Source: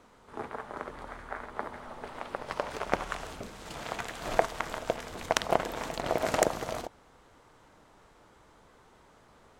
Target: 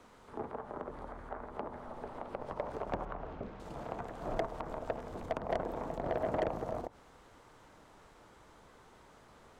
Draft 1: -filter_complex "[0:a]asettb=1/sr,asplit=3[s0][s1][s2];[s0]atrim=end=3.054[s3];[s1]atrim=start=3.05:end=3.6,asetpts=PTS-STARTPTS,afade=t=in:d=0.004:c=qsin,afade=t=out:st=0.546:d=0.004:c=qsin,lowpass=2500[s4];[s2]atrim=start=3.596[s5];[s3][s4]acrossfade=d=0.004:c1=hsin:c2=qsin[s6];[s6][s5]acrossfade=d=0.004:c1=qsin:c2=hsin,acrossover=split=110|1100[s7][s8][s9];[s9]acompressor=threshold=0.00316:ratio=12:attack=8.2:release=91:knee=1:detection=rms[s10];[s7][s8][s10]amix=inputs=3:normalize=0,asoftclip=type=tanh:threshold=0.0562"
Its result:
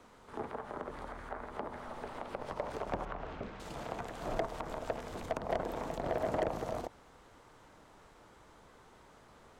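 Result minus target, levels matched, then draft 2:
compression: peak gain reduction -9 dB
-filter_complex "[0:a]asettb=1/sr,asplit=3[s0][s1][s2];[s0]atrim=end=3.054[s3];[s1]atrim=start=3.05:end=3.6,asetpts=PTS-STARTPTS,afade=t=in:d=0.004:c=qsin,afade=t=out:st=0.546:d=0.004:c=qsin,lowpass=2500[s4];[s2]atrim=start=3.596[s5];[s3][s4]acrossfade=d=0.004:c1=hsin:c2=qsin[s6];[s6][s5]acrossfade=d=0.004:c1=qsin:c2=hsin,acrossover=split=110|1100[s7][s8][s9];[s9]acompressor=threshold=0.001:ratio=12:attack=8.2:release=91:knee=1:detection=rms[s10];[s7][s8][s10]amix=inputs=3:normalize=0,asoftclip=type=tanh:threshold=0.0562"

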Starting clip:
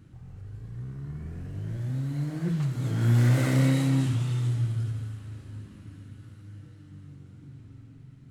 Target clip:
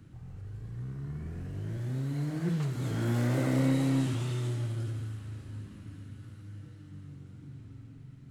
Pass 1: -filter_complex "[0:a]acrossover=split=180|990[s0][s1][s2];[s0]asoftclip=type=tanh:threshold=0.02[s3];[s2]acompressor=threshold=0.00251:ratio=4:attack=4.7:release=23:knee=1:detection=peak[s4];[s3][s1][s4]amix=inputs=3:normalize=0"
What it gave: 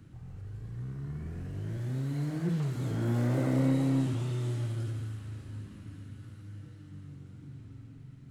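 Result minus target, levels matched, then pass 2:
compression: peak gain reduction +5.5 dB
-filter_complex "[0:a]acrossover=split=180|990[s0][s1][s2];[s0]asoftclip=type=tanh:threshold=0.02[s3];[s2]acompressor=threshold=0.00562:ratio=4:attack=4.7:release=23:knee=1:detection=peak[s4];[s3][s1][s4]amix=inputs=3:normalize=0"

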